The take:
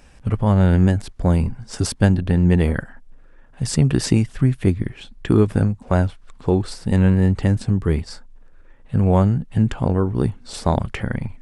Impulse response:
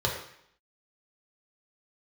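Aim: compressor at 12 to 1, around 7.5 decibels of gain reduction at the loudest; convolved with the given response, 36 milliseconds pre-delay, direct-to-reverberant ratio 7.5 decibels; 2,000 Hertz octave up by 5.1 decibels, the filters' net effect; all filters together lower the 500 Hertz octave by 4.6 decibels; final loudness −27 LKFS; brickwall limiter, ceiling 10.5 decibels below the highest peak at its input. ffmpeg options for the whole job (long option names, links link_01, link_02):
-filter_complex "[0:a]equalizer=frequency=500:width_type=o:gain=-6.5,equalizer=frequency=2000:width_type=o:gain=7,acompressor=threshold=-18dB:ratio=12,alimiter=limit=-19dB:level=0:latency=1,asplit=2[link_01][link_02];[1:a]atrim=start_sample=2205,adelay=36[link_03];[link_02][link_03]afir=irnorm=-1:irlink=0,volume=-18dB[link_04];[link_01][link_04]amix=inputs=2:normalize=0,volume=1dB"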